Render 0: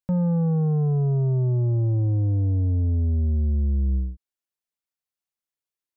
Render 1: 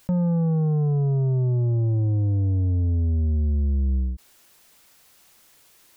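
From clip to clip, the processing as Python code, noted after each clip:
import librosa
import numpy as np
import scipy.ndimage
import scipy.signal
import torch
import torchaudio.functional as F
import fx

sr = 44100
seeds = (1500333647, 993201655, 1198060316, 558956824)

y = fx.env_flatten(x, sr, amount_pct=50)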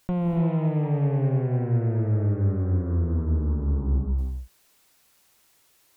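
y = fx.cheby_harmonics(x, sr, harmonics=(2, 7, 8), levels_db=(-7, -26, -27), full_scale_db=-18.0)
y = fx.rev_gated(y, sr, seeds[0], gate_ms=330, shape='rising', drr_db=2.5)
y = F.gain(torch.from_numpy(y), -4.0).numpy()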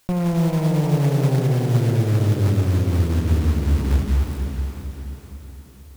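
y = fx.quant_float(x, sr, bits=2)
y = fx.echo_diffused(y, sr, ms=484, feedback_pct=46, wet_db=-6.0)
y = F.gain(torch.from_numpy(y), 4.0).numpy()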